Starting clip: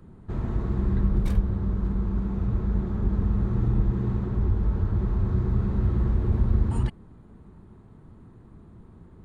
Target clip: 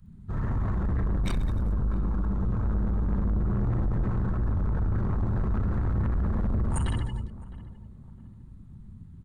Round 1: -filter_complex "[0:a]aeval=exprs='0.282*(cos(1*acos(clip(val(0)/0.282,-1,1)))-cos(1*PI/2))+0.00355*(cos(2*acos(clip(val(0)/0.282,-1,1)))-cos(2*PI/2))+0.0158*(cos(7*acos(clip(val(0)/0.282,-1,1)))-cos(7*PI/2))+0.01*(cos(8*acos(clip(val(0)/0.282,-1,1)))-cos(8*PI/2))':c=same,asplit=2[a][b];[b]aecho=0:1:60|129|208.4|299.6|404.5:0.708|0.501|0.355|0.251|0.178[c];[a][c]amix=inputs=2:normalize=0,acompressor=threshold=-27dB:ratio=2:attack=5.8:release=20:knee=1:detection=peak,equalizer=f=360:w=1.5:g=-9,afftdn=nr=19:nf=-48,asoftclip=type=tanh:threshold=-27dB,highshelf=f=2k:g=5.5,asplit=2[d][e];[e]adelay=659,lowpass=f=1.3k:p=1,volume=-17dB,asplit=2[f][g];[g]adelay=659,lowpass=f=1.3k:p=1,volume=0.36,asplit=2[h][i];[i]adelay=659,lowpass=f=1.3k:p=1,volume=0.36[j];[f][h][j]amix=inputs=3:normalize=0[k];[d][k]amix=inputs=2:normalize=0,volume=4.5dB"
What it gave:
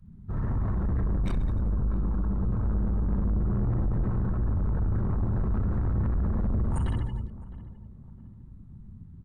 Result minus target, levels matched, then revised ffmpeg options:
4000 Hz band -7.5 dB
-filter_complex "[0:a]aeval=exprs='0.282*(cos(1*acos(clip(val(0)/0.282,-1,1)))-cos(1*PI/2))+0.00355*(cos(2*acos(clip(val(0)/0.282,-1,1)))-cos(2*PI/2))+0.0158*(cos(7*acos(clip(val(0)/0.282,-1,1)))-cos(7*PI/2))+0.01*(cos(8*acos(clip(val(0)/0.282,-1,1)))-cos(8*PI/2))':c=same,asplit=2[a][b];[b]aecho=0:1:60|129|208.4|299.6|404.5:0.708|0.501|0.355|0.251|0.178[c];[a][c]amix=inputs=2:normalize=0,acompressor=threshold=-27dB:ratio=2:attack=5.8:release=20:knee=1:detection=peak,equalizer=f=360:w=1.5:g=-9,afftdn=nr=19:nf=-48,asoftclip=type=tanh:threshold=-27dB,highshelf=f=2k:g=16.5,asplit=2[d][e];[e]adelay=659,lowpass=f=1.3k:p=1,volume=-17dB,asplit=2[f][g];[g]adelay=659,lowpass=f=1.3k:p=1,volume=0.36,asplit=2[h][i];[i]adelay=659,lowpass=f=1.3k:p=1,volume=0.36[j];[f][h][j]amix=inputs=3:normalize=0[k];[d][k]amix=inputs=2:normalize=0,volume=4.5dB"

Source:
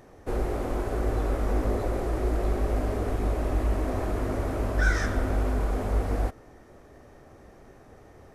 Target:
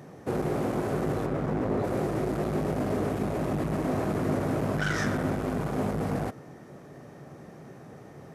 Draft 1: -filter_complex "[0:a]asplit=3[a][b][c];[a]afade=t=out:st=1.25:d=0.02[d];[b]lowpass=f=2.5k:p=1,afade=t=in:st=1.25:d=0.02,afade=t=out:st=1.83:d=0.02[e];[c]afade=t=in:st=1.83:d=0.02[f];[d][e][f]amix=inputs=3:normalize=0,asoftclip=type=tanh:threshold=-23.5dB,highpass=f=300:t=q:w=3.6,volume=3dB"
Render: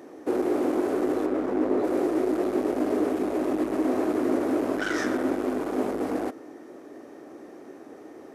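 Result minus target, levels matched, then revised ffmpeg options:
125 Hz band -19.5 dB
-filter_complex "[0:a]asplit=3[a][b][c];[a]afade=t=out:st=1.25:d=0.02[d];[b]lowpass=f=2.5k:p=1,afade=t=in:st=1.25:d=0.02,afade=t=out:st=1.83:d=0.02[e];[c]afade=t=in:st=1.83:d=0.02[f];[d][e][f]amix=inputs=3:normalize=0,asoftclip=type=tanh:threshold=-23.5dB,highpass=f=150:t=q:w=3.6,volume=3dB"

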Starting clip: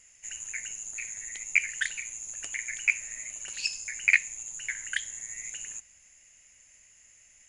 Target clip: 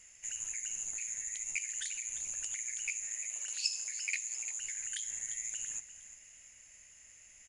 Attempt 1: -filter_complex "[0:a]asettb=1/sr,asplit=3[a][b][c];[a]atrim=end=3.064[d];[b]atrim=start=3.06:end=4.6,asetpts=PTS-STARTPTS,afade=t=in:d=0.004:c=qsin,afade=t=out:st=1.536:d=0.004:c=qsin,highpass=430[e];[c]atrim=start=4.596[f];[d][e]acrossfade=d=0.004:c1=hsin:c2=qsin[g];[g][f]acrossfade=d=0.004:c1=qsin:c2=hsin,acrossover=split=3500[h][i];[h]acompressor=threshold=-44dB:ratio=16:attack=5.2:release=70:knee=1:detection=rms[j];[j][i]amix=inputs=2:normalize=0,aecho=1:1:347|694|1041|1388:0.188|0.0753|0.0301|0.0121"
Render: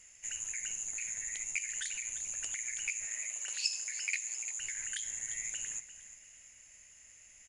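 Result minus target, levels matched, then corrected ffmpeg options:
compressor: peak gain reduction -8 dB
-filter_complex "[0:a]asettb=1/sr,asplit=3[a][b][c];[a]atrim=end=3.064[d];[b]atrim=start=3.06:end=4.6,asetpts=PTS-STARTPTS,afade=t=in:d=0.004:c=qsin,afade=t=out:st=1.536:d=0.004:c=qsin,highpass=430[e];[c]atrim=start=4.596[f];[d][e]acrossfade=d=0.004:c1=hsin:c2=qsin[g];[g][f]acrossfade=d=0.004:c1=qsin:c2=hsin,acrossover=split=3500[h][i];[h]acompressor=threshold=-52.5dB:ratio=16:attack=5.2:release=70:knee=1:detection=rms[j];[j][i]amix=inputs=2:normalize=0,aecho=1:1:347|694|1041|1388:0.188|0.0753|0.0301|0.0121"

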